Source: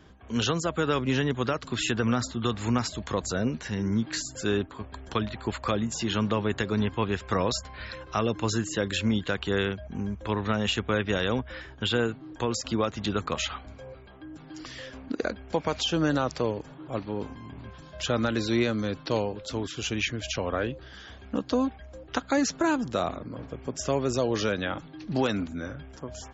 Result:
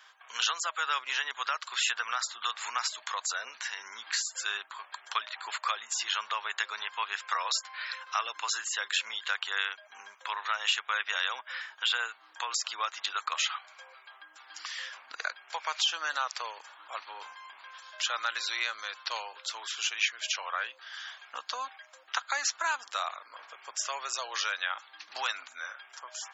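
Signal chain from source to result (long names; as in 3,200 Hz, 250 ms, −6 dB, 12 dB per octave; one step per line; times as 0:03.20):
high-pass filter 1,000 Hz 24 dB per octave
in parallel at −1.5 dB: downward compressor, threshold −41 dBFS, peak gain reduction 16 dB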